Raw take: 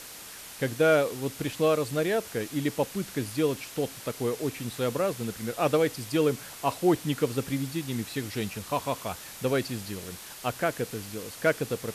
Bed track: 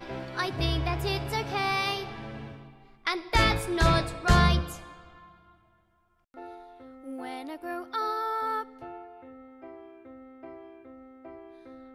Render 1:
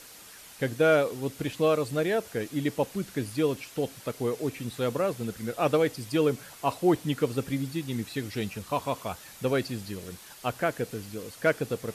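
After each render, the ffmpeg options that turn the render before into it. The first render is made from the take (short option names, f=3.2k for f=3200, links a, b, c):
-af "afftdn=nr=6:nf=-44"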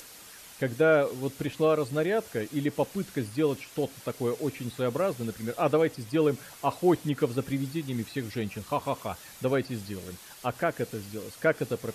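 -filter_complex "[0:a]acrossover=split=2400[a][b];[b]alimiter=level_in=12.5dB:limit=-24dB:level=0:latency=1:release=107,volume=-12.5dB[c];[a][c]amix=inputs=2:normalize=0,acompressor=mode=upward:threshold=-46dB:ratio=2.5"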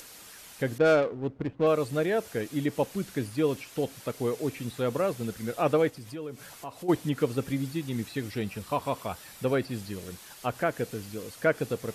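-filter_complex "[0:a]asettb=1/sr,asplit=3[a][b][c];[a]atrim=end=0.784[d];[b]atrim=start=0.78:end=1.67,asetpts=PTS-STARTPTS,afade=t=in:d=0.004:c=qsin,afade=t=out:st=0.886:d=0.004:c=qsin,adynamicsmooth=sensitivity=2.5:basefreq=570[e];[c]atrim=start=1.666[f];[d][e]acrossfade=d=0.004:c1=hsin:c2=qsin[g];[g][f]acrossfade=d=0.004:c1=qsin:c2=hsin,asplit=3[h][i][j];[h]afade=t=out:st=5.89:d=0.02[k];[i]acompressor=threshold=-41dB:ratio=2.5:attack=3.2:release=140:knee=1:detection=peak,afade=t=in:st=5.89:d=0.02,afade=t=out:st=6.88:d=0.02[l];[j]afade=t=in:st=6.88:d=0.02[m];[k][l][m]amix=inputs=3:normalize=0,asettb=1/sr,asplit=3[n][o][p];[n]atrim=end=8.284[q];[o]atrim=start=8.28:end=9.76,asetpts=PTS-STARTPTS,afade=t=in:d=0.004:c=qsin,afade=t=out:st=1.476:d=0.004:c=qsin,bandreject=f=6.5k:w=12[r];[p]atrim=start=9.756[s];[q][r]acrossfade=d=0.004:c1=hsin:c2=qsin[t];[t][s]acrossfade=d=0.004:c1=qsin:c2=hsin"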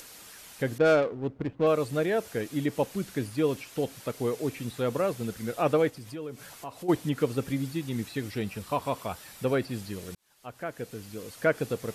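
-filter_complex "[0:a]asplit=2[a][b];[a]atrim=end=10.15,asetpts=PTS-STARTPTS,afade=t=out:st=10.146:d=0.004:c=hsin[c];[b]atrim=start=10.15,asetpts=PTS-STARTPTS,afade=t=in:d=1.29[d];[c][d]concat=n=2:v=0:a=1"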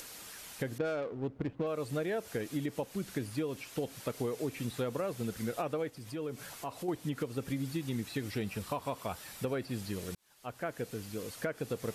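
-af "alimiter=limit=-19.5dB:level=0:latency=1:release=409,acompressor=threshold=-31dB:ratio=6"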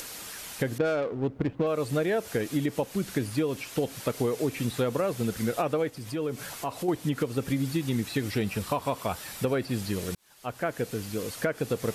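-af "volume=7.5dB"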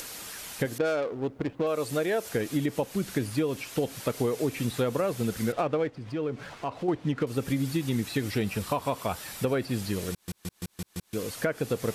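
-filter_complex "[0:a]asettb=1/sr,asplit=3[a][b][c];[a]atrim=end=0.654[d];[b]atrim=start=0.65:end=2.29,asetpts=PTS-STARTPTS,afade=t=in:d=0.004:c=qsin,afade=t=out:st=1.636:d=0.004:c=qsin,bass=f=250:g=-6,treble=f=4k:g=4[e];[c]atrim=start=2.286[f];[d][e]acrossfade=d=0.004:c1=hsin:c2=qsin[g];[g][f]acrossfade=d=0.004:c1=qsin:c2=hsin,asettb=1/sr,asplit=3[h][i][j];[h]atrim=end=5.524[k];[i]atrim=start=5.52:end=7.27,asetpts=PTS-STARTPTS,afade=t=in:d=0.004:c=qsin,afade=t=out:st=1.746:d=0.004:c=qsin,adynamicsmooth=sensitivity=6.5:basefreq=2.4k[l];[j]atrim=start=7.266[m];[k][l]acrossfade=d=0.004:c1=hsin:c2=qsin[n];[n][m]acrossfade=d=0.004:c1=qsin:c2=hsin,asplit=7[o][p][q][r][s][t][u];[o]atrim=end=10.282[v];[p]atrim=start=10.108:end=10.282[w];[q]atrim=start=10.108:end=10.282[x];[r]atrim=start=10.108:end=10.282[y];[s]atrim=start=10.108:end=10.282[z];[t]atrim=start=10.108:end=10.282[aa];[u]atrim=start=11.128[ab];[v][w]acrossfade=d=0.004:c1=hsin:c2=hsin[ac];[ac][x]acrossfade=d=0.004:c1=hsin:c2=hsin[ad];[ad][y]acrossfade=d=0.004:c1=hsin:c2=hsin[ae];[ae][z]acrossfade=d=0.004:c1=hsin:c2=hsin[af];[af][aa]acrossfade=d=0.004:c1=hsin:c2=hsin[ag];[ag][ab]acrossfade=d=0.004:c1=hsin:c2=hsin"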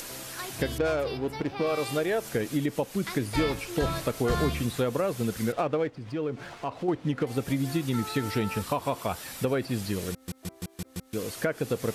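-filter_complex "[1:a]volume=-9dB[a];[0:a][a]amix=inputs=2:normalize=0"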